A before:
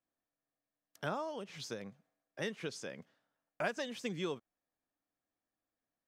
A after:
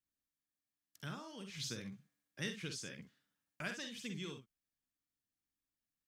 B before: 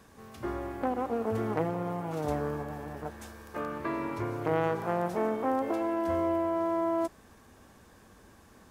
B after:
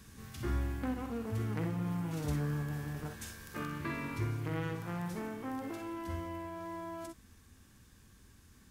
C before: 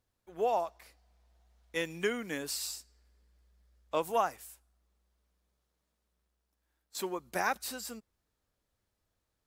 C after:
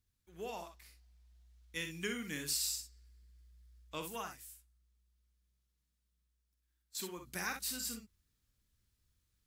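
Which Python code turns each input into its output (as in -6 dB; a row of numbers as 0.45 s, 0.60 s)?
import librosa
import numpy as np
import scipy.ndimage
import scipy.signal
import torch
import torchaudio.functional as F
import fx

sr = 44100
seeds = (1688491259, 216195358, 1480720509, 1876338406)

y = fx.rider(x, sr, range_db=4, speed_s=0.5)
y = fx.tone_stack(y, sr, knobs='6-0-2')
y = fx.room_early_taps(y, sr, ms=(47, 62), db=(-9.0, -9.0))
y = F.gain(torch.from_numpy(y), 15.0).numpy()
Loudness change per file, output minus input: -4.0 LU, -6.5 LU, -5.0 LU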